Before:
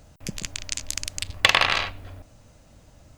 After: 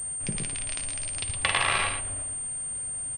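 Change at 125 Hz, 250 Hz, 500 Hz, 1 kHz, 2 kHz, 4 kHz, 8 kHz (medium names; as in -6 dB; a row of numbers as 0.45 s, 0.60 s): 0.0 dB, -0.5 dB, -4.5 dB, -3.0 dB, -5.0 dB, -7.5 dB, +6.5 dB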